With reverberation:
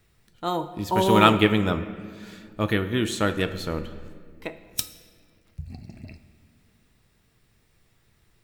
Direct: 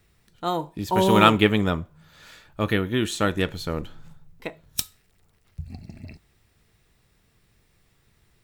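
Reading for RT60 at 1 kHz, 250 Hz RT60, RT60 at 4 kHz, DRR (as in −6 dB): 1.7 s, 3.2 s, 1.3 s, 10.0 dB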